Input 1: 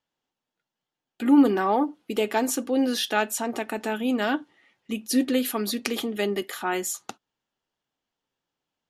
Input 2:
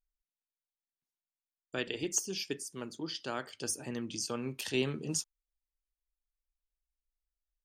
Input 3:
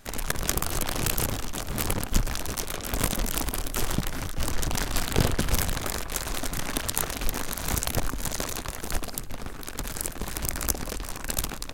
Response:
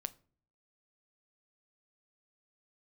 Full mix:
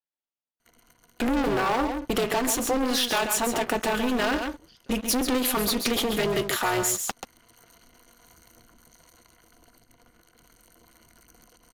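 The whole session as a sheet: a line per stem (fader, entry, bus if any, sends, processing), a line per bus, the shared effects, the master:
−3.5 dB, 0.00 s, no bus, no send, echo send −8.5 dB, leveller curve on the samples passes 5
−11.5 dB, 1.60 s, bus A, no send, no echo send, no processing
−17.0 dB, 0.60 s, bus A, no send, echo send −11.5 dB, soft clipping −17 dBFS, distortion −14 dB; EQ curve with evenly spaced ripples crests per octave 1.9, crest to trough 16 dB; hard clipping −15.5 dBFS, distortion −26 dB; automatic ducking −19 dB, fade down 0.60 s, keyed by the first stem
bus A: 0.0 dB, brickwall limiter −41.5 dBFS, peak gain reduction 13 dB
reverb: not used
echo: single-tap delay 135 ms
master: low-shelf EQ 180 Hz −8 dB; amplitude modulation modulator 250 Hz, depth 65%; downward compressor 3 to 1, threshold −22 dBFS, peak gain reduction 6 dB

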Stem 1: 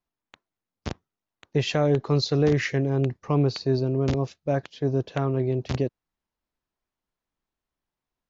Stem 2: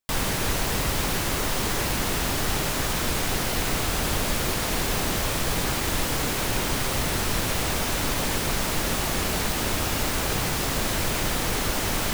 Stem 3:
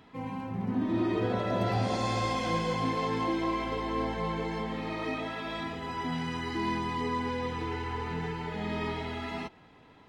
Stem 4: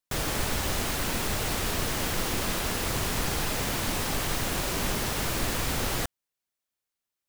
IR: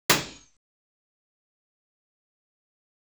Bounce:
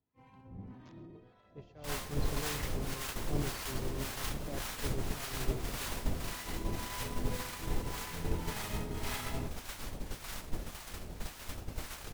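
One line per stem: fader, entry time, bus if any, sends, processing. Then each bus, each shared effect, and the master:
−12.0 dB, 0.00 s, no bus, no send, echo send −12 dB, no processing
−8.5 dB, 1.75 s, no bus, no send, no echo send, low-shelf EQ 88 Hz +8.5 dB; pitch modulation by a square or saw wave saw down 4.9 Hz, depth 100 cents
+2.0 dB, 0.00 s, bus A, no send, no echo send, sub-octave generator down 1 octave, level 0 dB; brickwall limiter −26.5 dBFS, peak gain reduction 10.5 dB; automatic ducking −11 dB, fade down 1.80 s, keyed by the first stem
−3.5 dB, 2.00 s, bus A, no send, no echo send, two-band tremolo in antiphase 5.1 Hz, crossover 690 Hz
bus A: 0.0 dB, automatic gain control gain up to 4 dB; brickwall limiter −25 dBFS, peak gain reduction 10 dB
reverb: not used
echo: single-tap delay 135 ms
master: downward expander −22 dBFS; two-band tremolo in antiphase 1.8 Hz, depth 70%, crossover 730 Hz

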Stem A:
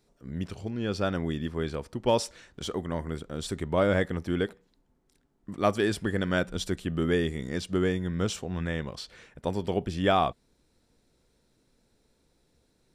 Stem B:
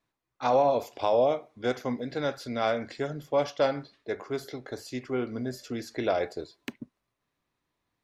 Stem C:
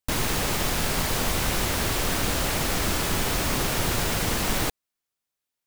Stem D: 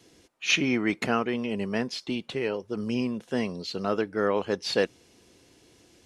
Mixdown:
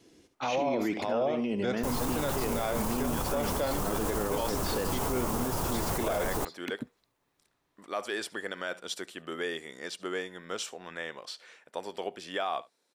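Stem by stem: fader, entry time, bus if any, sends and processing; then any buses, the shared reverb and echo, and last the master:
−1.0 dB, 2.30 s, no send, echo send −23 dB, high-pass filter 560 Hz 12 dB per octave
+3.0 dB, 0.00 s, no send, no echo send, no processing
−2.5 dB, 1.75 s, no send, no echo send, octave-band graphic EQ 1,000/2,000/4,000 Hz +7/−11/−9 dB
−5.0 dB, 0.00 s, no send, echo send −11.5 dB, parametric band 290 Hz +6 dB 1.4 octaves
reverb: not used
echo: single-tap delay 72 ms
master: brickwall limiter −21 dBFS, peak gain reduction 13 dB

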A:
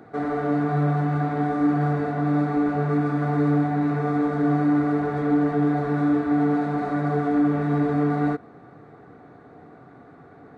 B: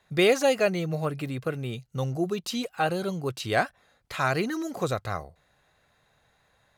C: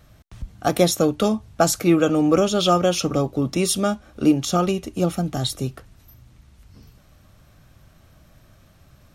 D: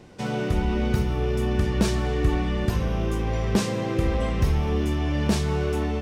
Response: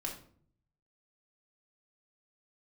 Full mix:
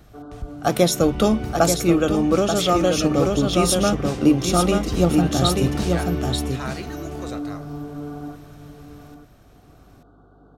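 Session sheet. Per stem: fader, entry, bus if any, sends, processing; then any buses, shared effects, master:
−11.0 dB, 0.00 s, send −11 dB, echo send −13.5 dB, elliptic band-stop filter 1,500–3,000 Hz; automatic ducking −10 dB, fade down 0.45 s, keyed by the third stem
−14.0 dB, 2.40 s, send −5 dB, no echo send, parametric band 5,600 Hz +7 dB 1.4 octaves
+1.0 dB, 0.00 s, no send, echo send −5.5 dB, no processing
−7.0 dB, 0.50 s, no send, echo send −6.5 dB, no processing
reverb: on, RT60 0.55 s, pre-delay 3 ms
echo: single-tap delay 884 ms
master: speech leveller within 3 dB 0.5 s; mains hum 50 Hz, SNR 34 dB

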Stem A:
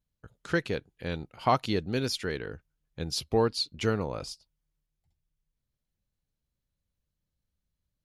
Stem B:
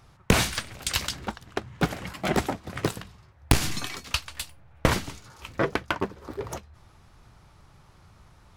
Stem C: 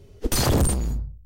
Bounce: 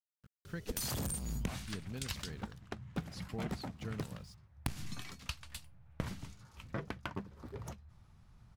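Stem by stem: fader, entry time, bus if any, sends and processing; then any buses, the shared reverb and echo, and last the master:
−18.0 dB, 0.00 s, no send, centre clipping without the shift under −45 dBFS
−13.0 dB, 1.15 s, no send, no processing
−4.0 dB, 0.45 s, no send, spectral tilt +2.5 dB per octave; downward compressor 3 to 1, threshold −29 dBFS, peak gain reduction 10 dB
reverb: not used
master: low shelf with overshoot 260 Hz +7 dB, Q 1.5; downward compressor 5 to 1, threshold −35 dBFS, peak gain reduction 14 dB

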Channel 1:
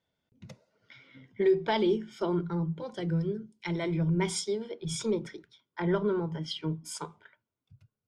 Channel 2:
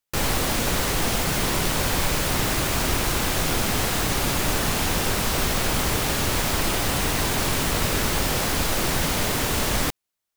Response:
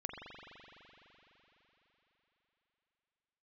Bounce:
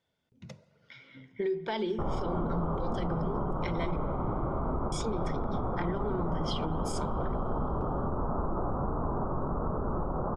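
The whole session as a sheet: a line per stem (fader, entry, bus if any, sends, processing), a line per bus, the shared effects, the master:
+1.0 dB, 0.00 s, muted 0:03.96–0:04.92, send −14 dB, Bessel low-pass filter 9,400 Hz; mains-hum notches 50/100/150/200/250/300/350 Hz; downward compressor 6 to 1, threshold −30 dBFS, peak gain reduction 10 dB
0.0 dB, 1.85 s, no send, Butterworth low-pass 1,300 Hz 72 dB per octave; flanger 1.4 Hz, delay 4.5 ms, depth 1.2 ms, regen −66%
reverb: on, RT60 4.1 s, pre-delay 42 ms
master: brickwall limiter −22.5 dBFS, peak gain reduction 7.5 dB

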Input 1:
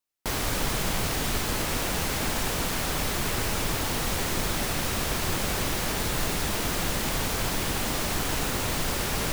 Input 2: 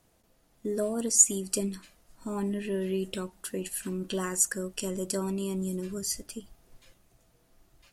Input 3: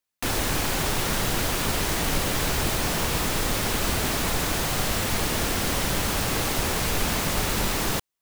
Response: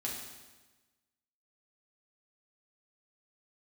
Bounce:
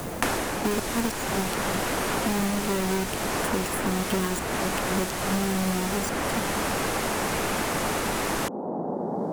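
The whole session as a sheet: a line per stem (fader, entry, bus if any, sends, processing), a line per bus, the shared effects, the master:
−7.0 dB, 0.00 s, no send, no echo send, elliptic band-pass filter 190–830 Hz, stop band 50 dB
+1.5 dB, 0.00 s, no send, no echo send, each half-wave held at its own peak; gate with flip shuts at −20 dBFS, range −28 dB
−0.5 dB, 0.00 s, no send, echo send −3 dB, low-pass filter 12,000 Hz 12 dB per octave; low-shelf EQ 210 Hz −9 dB; automatic ducking −12 dB, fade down 0.30 s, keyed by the second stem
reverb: not used
echo: single-tap delay 486 ms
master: parametric band 3,900 Hz −5 dB 1.5 octaves; multiband upward and downward compressor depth 100%

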